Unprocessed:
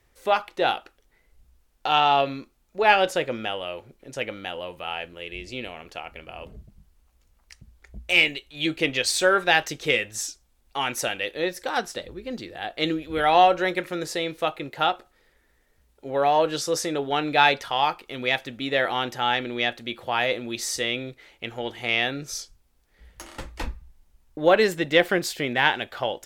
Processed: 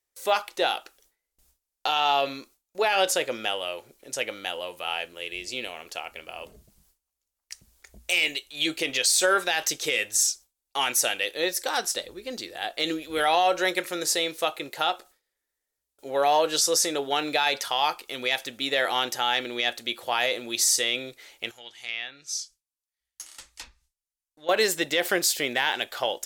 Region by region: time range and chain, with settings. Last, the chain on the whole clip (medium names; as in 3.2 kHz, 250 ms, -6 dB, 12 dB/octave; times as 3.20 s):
21.51–24.49 s: low-pass that closes with the level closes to 2.6 kHz, closed at -22 dBFS + amplifier tone stack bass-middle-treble 5-5-5
whole clip: gate with hold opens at -48 dBFS; tone controls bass -12 dB, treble +13 dB; peak limiter -12 dBFS